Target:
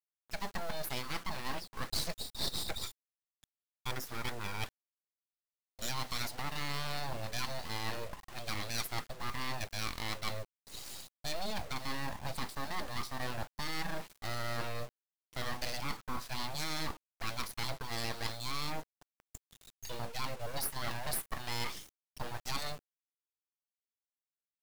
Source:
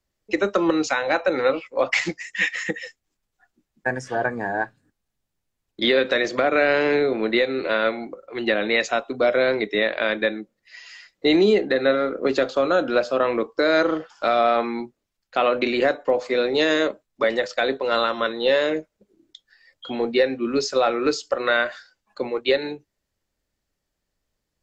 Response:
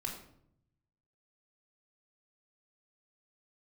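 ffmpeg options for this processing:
-af "equalizer=f=450:w=5.3:g=-8,areverse,acompressor=threshold=-29dB:ratio=6,areverse,aeval=exprs='abs(val(0))':c=same,aexciter=amount=2.6:drive=1.6:freq=4k,acrusher=bits=7:mix=0:aa=0.000001,volume=-4dB"

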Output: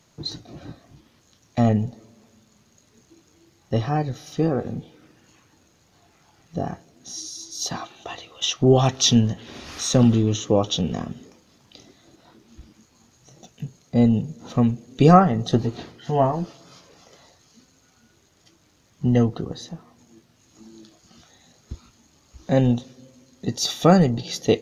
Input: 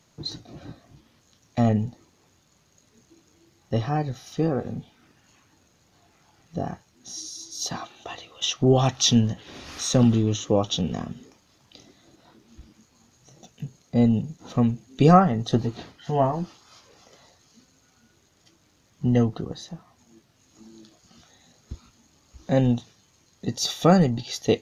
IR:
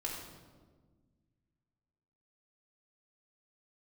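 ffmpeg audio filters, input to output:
-filter_complex "[0:a]asplit=2[a][b];[b]bandpass=f=420:t=q:w=1.6:csg=0[c];[1:a]atrim=start_sample=2205[d];[c][d]afir=irnorm=-1:irlink=0,volume=-19.5dB[e];[a][e]amix=inputs=2:normalize=0,volume=2dB"

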